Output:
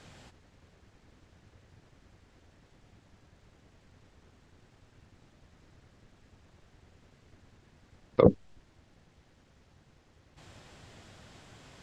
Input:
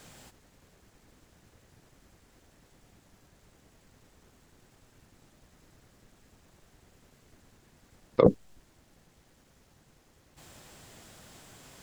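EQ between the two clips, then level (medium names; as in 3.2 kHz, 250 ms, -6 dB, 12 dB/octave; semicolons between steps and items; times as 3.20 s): tape spacing loss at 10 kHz 23 dB; peaking EQ 89 Hz +5.5 dB 0.72 oct; treble shelf 2.2 kHz +9.5 dB; 0.0 dB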